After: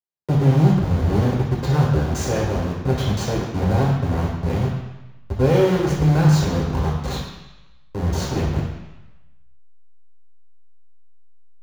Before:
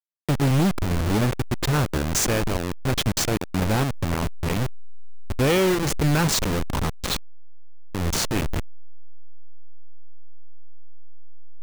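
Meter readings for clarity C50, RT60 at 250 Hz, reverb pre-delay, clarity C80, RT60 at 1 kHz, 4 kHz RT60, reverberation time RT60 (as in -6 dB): 3.0 dB, 0.95 s, 3 ms, 5.5 dB, 1.1 s, 1.1 s, 1.0 s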